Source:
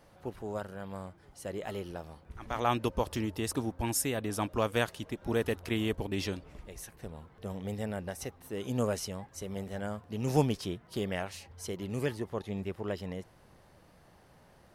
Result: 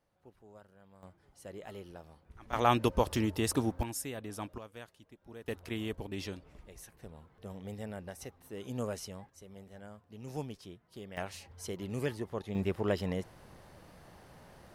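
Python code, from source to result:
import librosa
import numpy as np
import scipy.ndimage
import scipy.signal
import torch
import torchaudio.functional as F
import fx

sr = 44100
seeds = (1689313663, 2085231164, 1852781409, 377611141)

y = fx.gain(x, sr, db=fx.steps((0.0, -18.5), (1.03, -8.0), (2.53, 2.5), (3.83, -8.0), (4.58, -19.0), (5.48, -6.0), (9.3, -13.0), (11.17, -2.0), (12.55, 4.5)))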